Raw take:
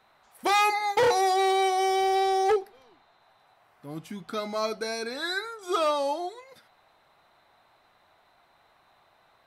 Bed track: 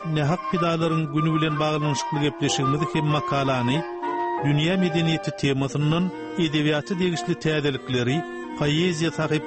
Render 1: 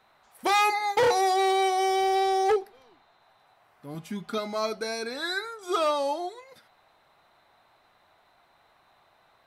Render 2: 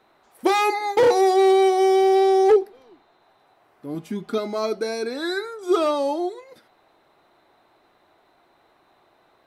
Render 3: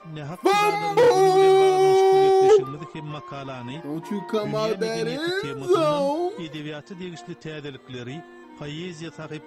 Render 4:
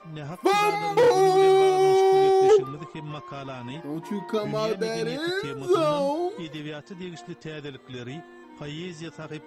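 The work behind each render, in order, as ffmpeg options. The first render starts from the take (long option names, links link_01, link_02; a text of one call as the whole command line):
ffmpeg -i in.wav -filter_complex "[0:a]asettb=1/sr,asplit=3[link_01][link_02][link_03];[link_01]atrim=end=3.944[link_04];[link_02]atrim=start=3.94:end=4.38,asetpts=PTS-STARTPTS,afade=type=in:duration=0.004:curve=qsin,afade=type=out:start_time=0.436:duration=0.004:curve=qsin,aecho=1:1:4.9:0.65,atrim=end_sample=19404[link_05];[link_03]atrim=start=4.376[link_06];[link_04][link_05]acrossfade=duration=0.004:curve1=hsin:curve2=qsin[link_07];[link_07][link_06]acrossfade=duration=0.004:curve1=qsin:curve2=hsin" out.wav
ffmpeg -i in.wav -af "equalizer=frequency=340:width=1.2:gain=12" out.wav
ffmpeg -i in.wav -i bed.wav -filter_complex "[1:a]volume=-12dB[link_01];[0:a][link_01]amix=inputs=2:normalize=0" out.wav
ffmpeg -i in.wav -af "volume=-2dB" out.wav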